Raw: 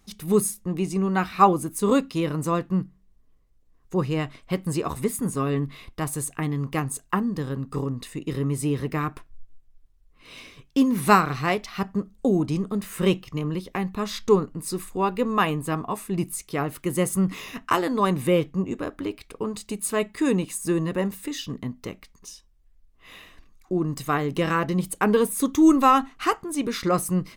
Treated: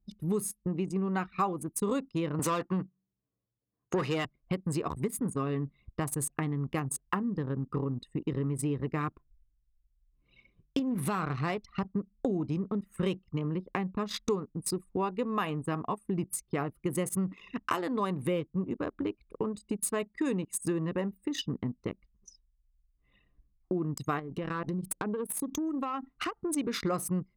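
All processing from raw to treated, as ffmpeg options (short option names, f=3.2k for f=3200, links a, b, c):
-filter_complex "[0:a]asettb=1/sr,asplit=3[a][b][c];[a]atrim=end=2.394[d];[b]atrim=start=2.39:end=4.25,asetpts=PTS-STARTPTS,afade=t=in:d=0.004:c=qsin,afade=t=out:st=1.856:d=0.004:c=qsin,highpass=f=90:w=0.5412,highpass=f=90:w=1.3066,highshelf=f=7.4k:g=8,asplit=2[e][f];[f]highpass=f=720:p=1,volume=20dB,asoftclip=type=tanh:threshold=-11dB[g];[e][g]amix=inputs=2:normalize=0,lowpass=f=3.5k:p=1,volume=-6dB[h];[c]atrim=start=4.246[i];[d][h]acrossfade=d=0.004:c1=hsin:c2=qsin[j];[j][i]acrossfade=d=0.004:c1=qsin:c2=hsin,asettb=1/sr,asplit=3[k][l][m];[k]atrim=end=10.794[n];[l]atrim=start=10.79:end=11.88,asetpts=PTS-STARTPTS,afade=t=in:d=0.004:c=qsin,afade=t=out:st=1.086:d=0.004:c=qsin,lowshelf=f=89:g=9,acompressor=threshold=-17dB:ratio=6:attack=3.2:release=140:knee=1:detection=peak,aeval=exprs='(tanh(5.62*val(0)+0.3)-tanh(0.3))/5.62':c=same[o];[m]atrim=start=11.876[p];[n][o]acrossfade=d=0.004:c1=hsin:c2=qsin[q];[q][p]acrossfade=d=0.004:c1=qsin:c2=hsin,asettb=1/sr,asplit=3[r][s][t];[r]atrim=end=24.194[u];[s]atrim=start=24.19:end=26.45,asetpts=PTS-STARTPTS,afade=t=in:d=0.004:c=qsin,afade=t=out:st=2.256:d=0.004:c=qsin,highshelf=f=3.2k:g=7,acompressor=threshold=-29dB:ratio=12:attack=3.2:release=140:knee=1:detection=peak,aeval=exprs='clip(val(0),-1,0.0316)':c=same[v];[t]atrim=start=26.446[w];[u][v]acrossfade=d=0.004:c1=hsin:c2=qsin[x];[x][w]acrossfade=d=0.004:c1=qsin:c2=hsin,highpass=55,anlmdn=15.8,acompressor=threshold=-34dB:ratio=4,volume=4dB"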